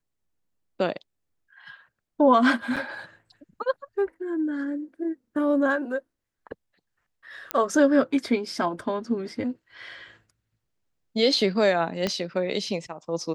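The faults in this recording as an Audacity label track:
2.760000	2.770000	gap 6.3 ms
7.510000	7.510000	pop -9 dBFS
12.070000	12.070000	pop -12 dBFS

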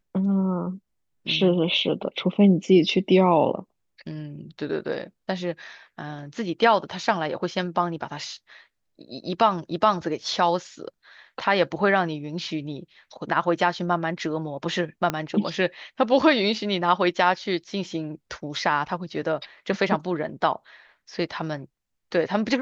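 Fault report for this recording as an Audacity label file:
15.100000	15.100000	pop -10 dBFS

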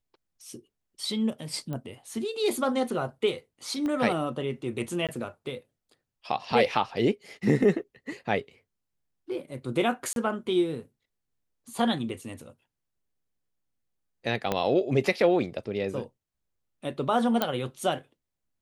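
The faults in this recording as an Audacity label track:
1.730000	1.730000	pop -23 dBFS
3.860000	3.860000	pop -21 dBFS
5.070000	5.090000	gap 17 ms
10.130000	10.160000	gap 32 ms
14.520000	14.520000	pop -12 dBFS
17.420000	17.420000	pop -10 dBFS

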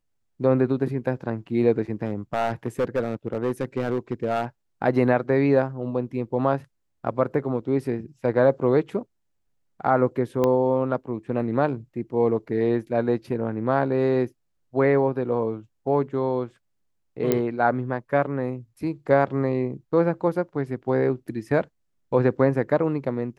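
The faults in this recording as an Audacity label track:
2.060000	4.450000	clipped -18.5 dBFS
10.440000	10.440000	pop -11 dBFS
17.320000	17.320000	pop -8 dBFS

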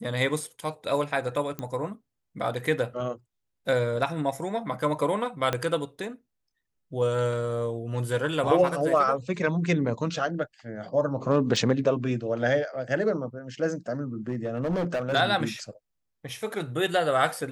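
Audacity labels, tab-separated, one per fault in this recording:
1.590000	1.590000	pop -19 dBFS
5.530000	5.530000	pop -11 dBFS
11.560000	11.560000	gap 3.3 ms
14.280000	15.140000	clipped -23.5 dBFS

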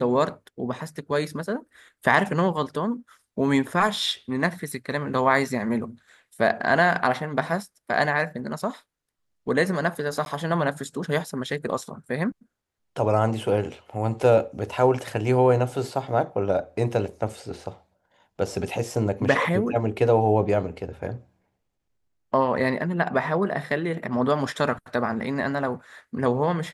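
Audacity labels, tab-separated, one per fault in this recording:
10.250000	10.260000	gap

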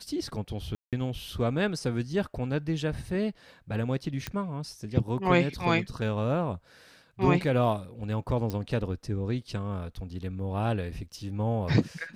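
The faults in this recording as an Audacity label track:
0.750000	0.930000	gap 0.177 s
4.270000	4.270000	pop -16 dBFS
8.500000	8.500000	pop -19 dBFS

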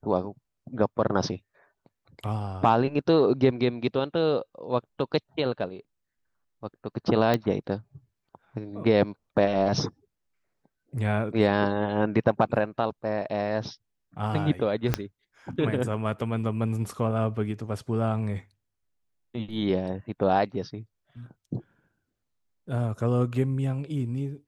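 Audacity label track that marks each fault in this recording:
7.340000	7.340000	pop -11 dBFS
14.940000	14.940000	pop -9 dBFS

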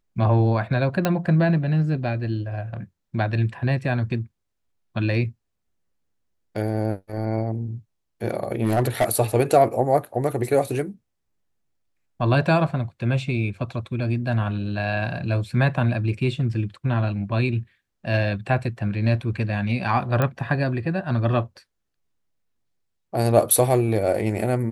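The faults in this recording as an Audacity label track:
1.050000	1.050000	pop -7 dBFS
8.630000	9.050000	clipped -14.5 dBFS
20.220000	20.220000	pop -10 dBFS

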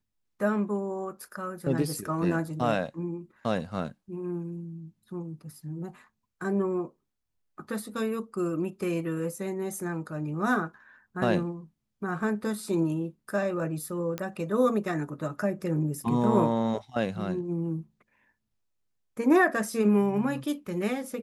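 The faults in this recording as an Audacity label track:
14.180000	14.180000	pop -17 dBFS

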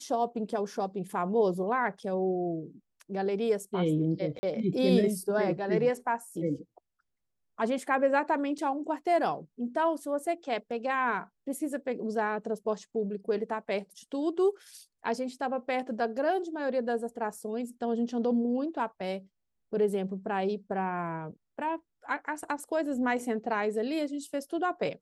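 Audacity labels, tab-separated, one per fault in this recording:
4.390000	4.430000	gap 40 ms
8.580000	8.580000	gap 4.7 ms

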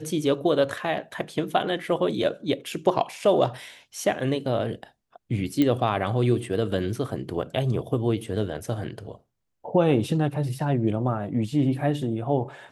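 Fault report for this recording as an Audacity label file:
5.620000	5.620000	pop -11 dBFS

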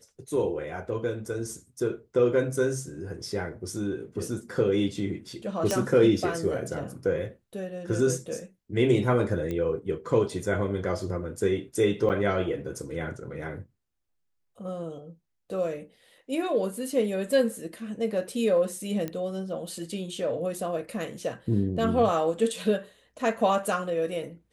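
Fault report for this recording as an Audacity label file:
5.710000	5.710000	pop -12 dBFS
9.510000	9.510000	pop -20 dBFS
12.090000	12.100000	gap 8.8 ms
19.080000	19.080000	pop -19 dBFS

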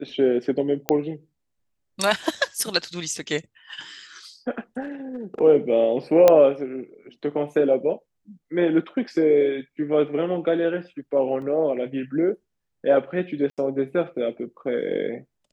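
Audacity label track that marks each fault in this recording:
0.890000	0.890000	pop -4 dBFS
4.810000	5.410000	clipped -26.5 dBFS
6.280000	6.280000	pop -3 dBFS
11.420000	11.420000	gap 2.4 ms
13.500000	13.580000	gap 77 ms

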